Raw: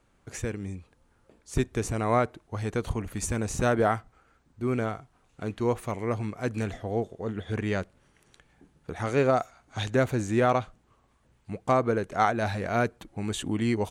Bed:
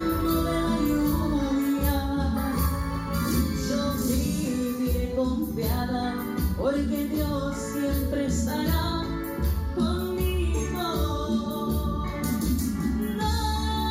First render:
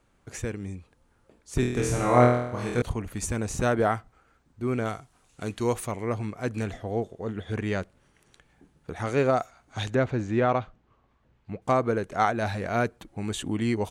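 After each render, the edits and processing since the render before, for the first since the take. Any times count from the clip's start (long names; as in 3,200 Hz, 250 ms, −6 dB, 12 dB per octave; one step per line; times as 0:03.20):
0:01.60–0:02.82: flutter between parallel walls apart 4.2 metres, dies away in 0.78 s
0:04.85–0:05.87: parametric band 9,300 Hz +11 dB 2.4 octaves
0:09.95–0:11.62: high-frequency loss of the air 150 metres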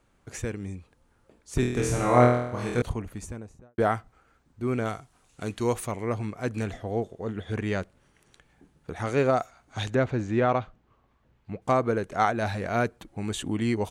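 0:02.76–0:03.78: fade out and dull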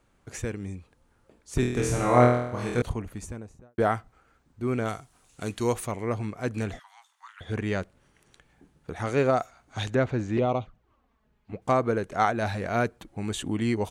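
0:04.88–0:05.72: high-shelf EQ 5,200 Hz +5.5 dB
0:06.79–0:07.41: Butterworth high-pass 940 Hz 72 dB per octave
0:10.37–0:11.53: flanger swept by the level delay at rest 5 ms, full sweep at −22 dBFS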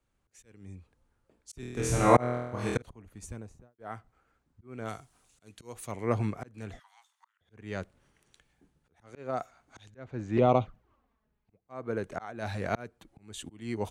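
volume swells 598 ms
multiband upward and downward expander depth 40%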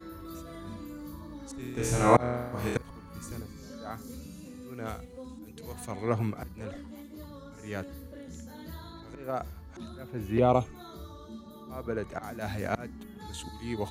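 mix in bed −18.5 dB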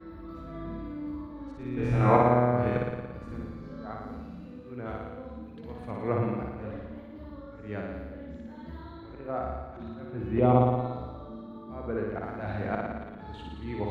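high-frequency loss of the air 400 metres
flutter between parallel walls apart 9.8 metres, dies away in 1.3 s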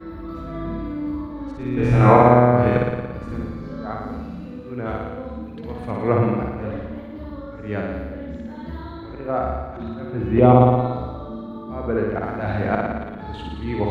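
level +9.5 dB
brickwall limiter −1 dBFS, peak gain reduction 3 dB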